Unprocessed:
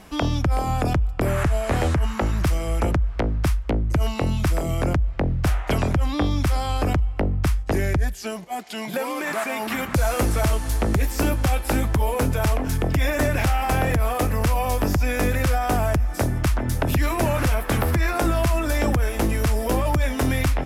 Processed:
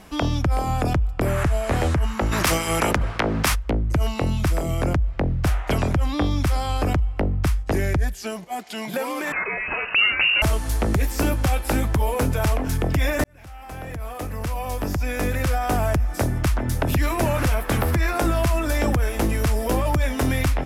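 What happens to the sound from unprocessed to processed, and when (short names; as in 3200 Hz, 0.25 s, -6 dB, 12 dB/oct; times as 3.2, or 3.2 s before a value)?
2.31–3.54 spectral limiter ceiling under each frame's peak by 23 dB
9.32–10.42 inverted band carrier 2800 Hz
13.24–15.87 fade in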